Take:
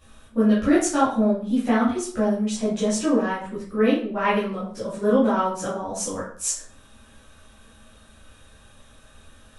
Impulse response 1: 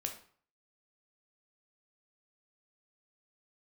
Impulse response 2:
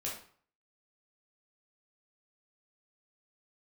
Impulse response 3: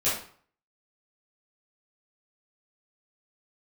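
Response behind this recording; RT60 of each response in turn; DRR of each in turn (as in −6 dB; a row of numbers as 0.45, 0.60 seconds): 3; 0.50, 0.50, 0.50 seconds; 3.0, −5.0, −11.5 decibels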